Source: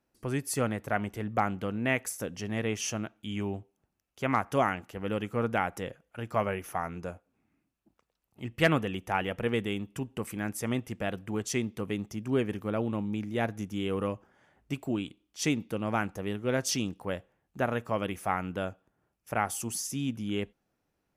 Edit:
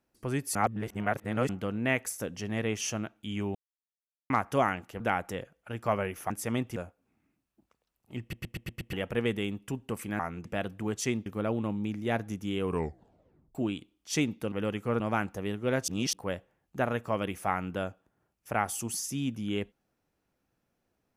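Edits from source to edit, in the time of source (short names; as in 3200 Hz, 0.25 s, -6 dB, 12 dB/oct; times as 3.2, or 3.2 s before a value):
0.55–1.49 reverse
3.55–4.3 mute
5–5.48 move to 15.81
6.78–7.04 swap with 10.47–10.93
8.49 stutter in place 0.12 s, 6 plays
11.74–12.55 cut
13.93 tape stop 0.91 s
16.69–16.94 reverse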